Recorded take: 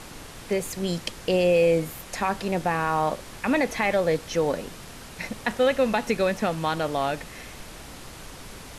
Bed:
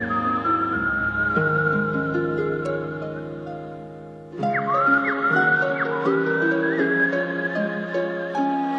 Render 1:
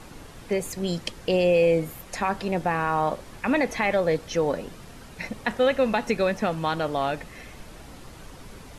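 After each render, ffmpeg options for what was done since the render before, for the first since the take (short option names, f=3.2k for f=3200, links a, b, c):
-af "afftdn=nr=7:nf=-43"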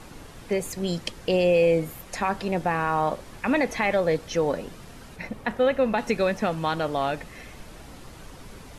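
-filter_complex "[0:a]asettb=1/sr,asplit=3[a][b][c];[a]atrim=end=5.164[d];[b]atrim=start=5.16:end=5.98,asetpts=PTS-STARTPTS,afade=t=in:d=0.004:c=qsin,afade=t=out:st=0.816:d=0.004:c=qsin,equalizer=f=6.7k:t=o:w=2.5:g=-7.5[e];[c]atrim=start=5.976[f];[d][e]acrossfade=d=0.004:c1=hsin:c2=qsin[g];[g][f]acrossfade=d=0.004:c1=qsin:c2=hsin"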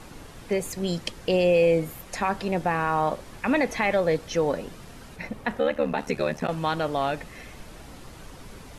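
-filter_complex "[0:a]asplit=3[a][b][c];[a]afade=t=out:st=5.59:d=0.02[d];[b]aeval=exprs='val(0)*sin(2*PI*37*n/s)':c=same,afade=t=in:st=5.59:d=0.02,afade=t=out:st=6.47:d=0.02[e];[c]afade=t=in:st=6.47:d=0.02[f];[d][e][f]amix=inputs=3:normalize=0"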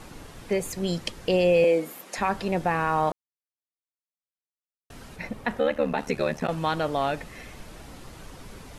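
-filter_complex "[0:a]asettb=1/sr,asplit=3[a][b][c];[a]atrim=end=1.644[d];[b]atrim=start=1.64:end=2.18,asetpts=PTS-STARTPTS,afade=t=in:d=0.004:c=qsin,afade=t=out:st=0.536:d=0.004:c=qsin,highpass=f=220:w=0.5412,highpass=f=220:w=1.3066[e];[c]atrim=start=2.176[f];[d][e]acrossfade=d=0.004:c1=hsin:c2=qsin[g];[g][f]acrossfade=d=0.004:c1=qsin:c2=hsin,asplit=3[h][i][j];[h]atrim=end=3.12,asetpts=PTS-STARTPTS,afade=t=out:st=3.116:d=0.004:c=hsin[k];[i]atrim=start=3.12:end=4.9,asetpts=PTS-STARTPTS,volume=0[l];[j]atrim=start=4.9,asetpts=PTS-STARTPTS,afade=t=in:d=0.004:c=hsin[m];[k][l][m]concat=n=3:v=0:a=1"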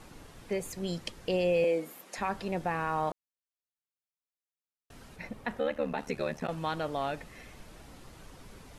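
-af "volume=-7dB"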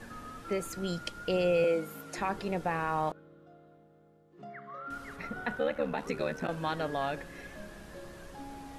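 -filter_complex "[1:a]volume=-23.5dB[a];[0:a][a]amix=inputs=2:normalize=0"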